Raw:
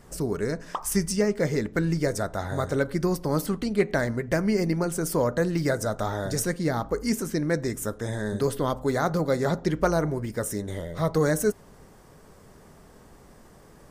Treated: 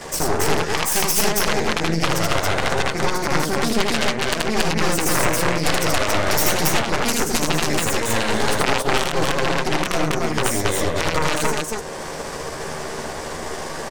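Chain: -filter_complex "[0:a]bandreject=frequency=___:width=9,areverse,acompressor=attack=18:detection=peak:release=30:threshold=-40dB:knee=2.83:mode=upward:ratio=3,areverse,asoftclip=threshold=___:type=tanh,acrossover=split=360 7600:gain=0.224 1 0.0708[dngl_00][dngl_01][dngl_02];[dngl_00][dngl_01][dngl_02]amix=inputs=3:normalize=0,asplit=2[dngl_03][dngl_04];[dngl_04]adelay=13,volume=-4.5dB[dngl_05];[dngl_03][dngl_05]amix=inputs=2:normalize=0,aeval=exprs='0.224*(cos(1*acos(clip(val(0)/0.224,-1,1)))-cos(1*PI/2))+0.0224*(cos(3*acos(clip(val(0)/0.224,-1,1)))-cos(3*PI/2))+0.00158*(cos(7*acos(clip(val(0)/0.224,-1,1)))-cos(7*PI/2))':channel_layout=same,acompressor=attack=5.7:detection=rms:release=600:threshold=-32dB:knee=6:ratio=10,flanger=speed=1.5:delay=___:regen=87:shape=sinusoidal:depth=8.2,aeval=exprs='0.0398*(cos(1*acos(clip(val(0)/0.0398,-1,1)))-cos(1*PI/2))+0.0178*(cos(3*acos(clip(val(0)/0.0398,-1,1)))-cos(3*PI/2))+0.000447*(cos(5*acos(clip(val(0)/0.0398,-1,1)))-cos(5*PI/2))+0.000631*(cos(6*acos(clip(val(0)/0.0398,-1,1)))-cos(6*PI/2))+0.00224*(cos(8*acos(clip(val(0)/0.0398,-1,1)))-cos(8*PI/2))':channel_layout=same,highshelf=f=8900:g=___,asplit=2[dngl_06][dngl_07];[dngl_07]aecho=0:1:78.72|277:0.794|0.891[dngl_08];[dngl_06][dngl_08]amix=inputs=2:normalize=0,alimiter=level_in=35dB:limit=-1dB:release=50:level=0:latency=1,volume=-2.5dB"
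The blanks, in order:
1300, -17.5dB, 5.8, 11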